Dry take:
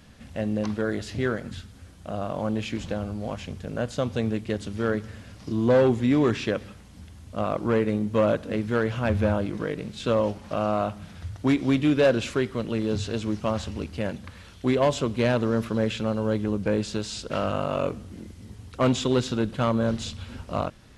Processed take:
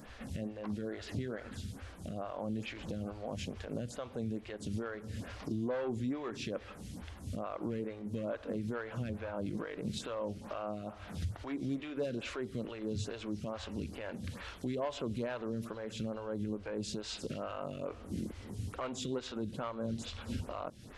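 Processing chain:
downward compressor 4 to 1, threshold −36 dBFS, peak gain reduction 16.5 dB
brickwall limiter −32 dBFS, peak gain reduction 8.5 dB
phaser with staggered stages 2.3 Hz
level +5.5 dB

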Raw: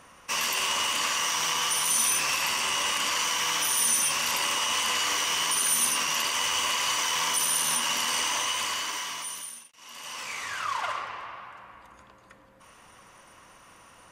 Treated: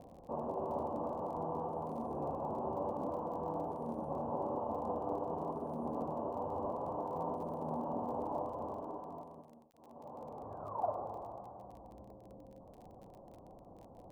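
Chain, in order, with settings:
elliptic low-pass filter 770 Hz, stop band 60 dB
surface crackle 31 per second −55 dBFS
level +5 dB

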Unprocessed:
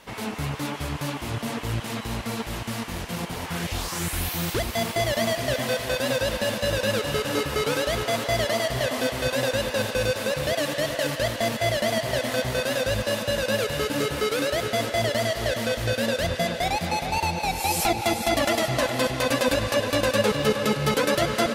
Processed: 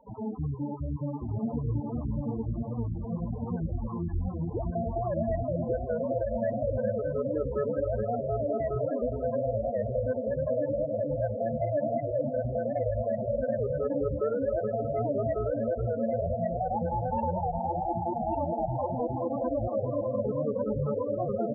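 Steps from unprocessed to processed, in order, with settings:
low-pass filter 1,300 Hz 12 dB per octave
hum removal 134.9 Hz, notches 7
brickwall limiter −21 dBFS, peak gain reduction 10 dB
soft clipping −18 dBFS, distortion −28 dB
spectral peaks only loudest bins 8
single-tap delay 1,147 ms −3 dB
wow of a warped record 78 rpm, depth 100 cents

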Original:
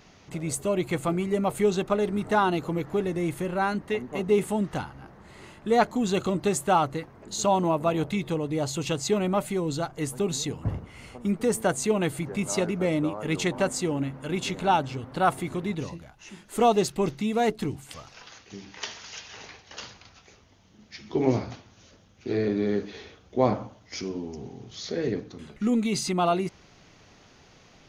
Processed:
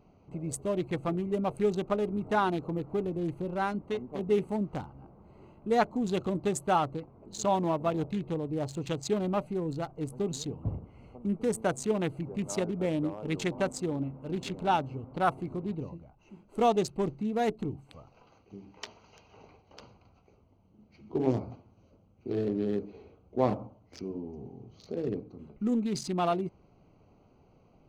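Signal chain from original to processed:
adaptive Wiener filter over 25 samples
level −4 dB

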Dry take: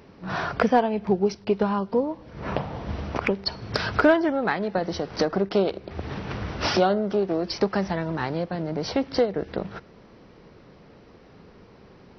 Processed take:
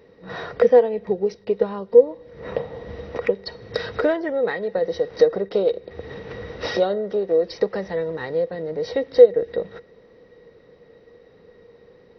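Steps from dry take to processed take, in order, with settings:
dynamic equaliser 520 Hz, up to +4 dB, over −33 dBFS, Q 2.7
hollow resonant body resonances 480/1,900/3,800 Hz, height 18 dB, ringing for 55 ms
level −7.5 dB

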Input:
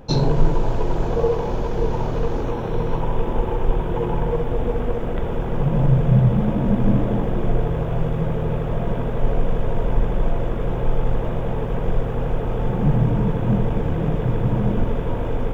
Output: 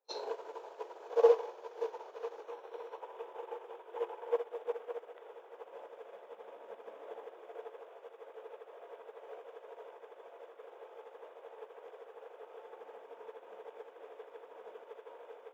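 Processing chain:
elliptic high-pass filter 430 Hz, stop band 70 dB
echo ahead of the sound 40 ms −23.5 dB
expander for the loud parts 2.5 to 1, over −42 dBFS
level −1 dB

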